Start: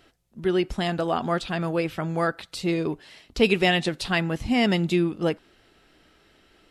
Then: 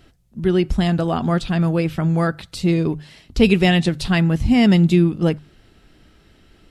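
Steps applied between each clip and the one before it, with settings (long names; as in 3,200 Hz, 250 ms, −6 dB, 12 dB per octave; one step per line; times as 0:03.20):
bass and treble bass +13 dB, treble +2 dB
mains-hum notches 50/100/150 Hz
level +1.5 dB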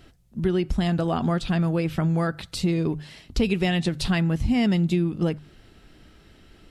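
downward compressor 4 to 1, threshold −20 dBFS, peak gain reduction 10.5 dB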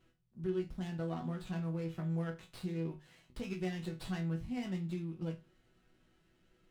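resonators tuned to a chord B2 sus4, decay 0.25 s
windowed peak hold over 5 samples
level −4 dB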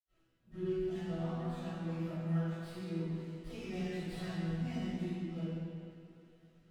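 convolution reverb RT60 2.5 s, pre-delay 60 ms
level +1 dB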